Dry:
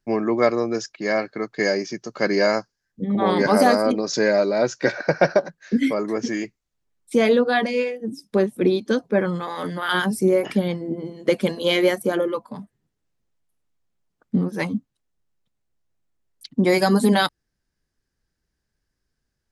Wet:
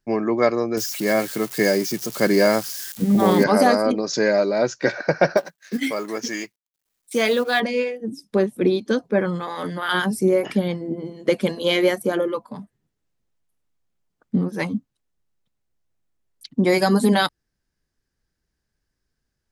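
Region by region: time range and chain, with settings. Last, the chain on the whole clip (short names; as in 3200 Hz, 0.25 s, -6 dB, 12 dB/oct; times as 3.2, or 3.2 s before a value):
0.77–3.44 switching spikes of -22.5 dBFS + low shelf 330 Hz +7.5 dB
5.37–7.6 G.711 law mismatch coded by A + tilt +2.5 dB/oct
whole clip: dry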